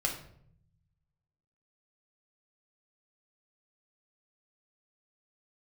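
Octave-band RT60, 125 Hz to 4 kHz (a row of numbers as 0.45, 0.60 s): 1.7, 1.3, 0.70, 0.60, 0.50, 0.45 s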